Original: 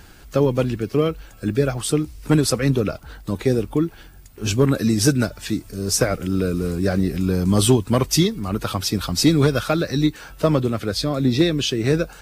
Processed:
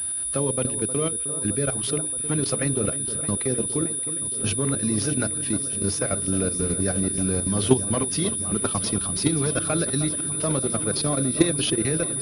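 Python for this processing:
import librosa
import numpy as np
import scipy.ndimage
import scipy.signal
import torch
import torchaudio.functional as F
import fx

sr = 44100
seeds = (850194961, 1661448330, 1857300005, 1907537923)

p1 = scipy.signal.sosfilt(scipy.signal.butter(4, 54.0, 'highpass', fs=sr, output='sos'), x)
p2 = fx.high_shelf(p1, sr, hz=3800.0, db=5.0)
p3 = fx.hum_notches(p2, sr, base_hz=60, count=10)
p4 = fx.transient(p3, sr, attack_db=2, sustain_db=-7)
p5 = fx.level_steps(p4, sr, step_db=12)
p6 = p5 + 10.0 ** (-45.0 / 20.0) * np.sin(2.0 * np.pi * 3600.0 * np.arange(len(p5)) / sr)
p7 = p6 + fx.echo_alternate(p6, sr, ms=310, hz=1600.0, feedback_pct=85, wet_db=-12.0, dry=0)
y = fx.pwm(p7, sr, carrier_hz=9800.0)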